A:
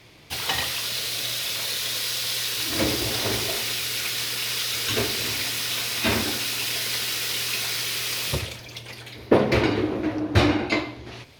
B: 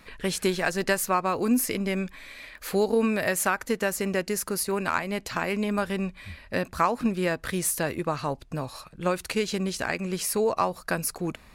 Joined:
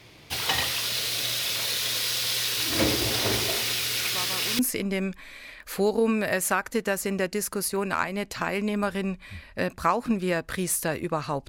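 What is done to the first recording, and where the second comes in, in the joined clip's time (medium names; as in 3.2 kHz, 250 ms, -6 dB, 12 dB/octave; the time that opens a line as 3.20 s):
A
4.12 s: add B from 1.07 s 0.47 s -13 dB
4.59 s: go over to B from 1.54 s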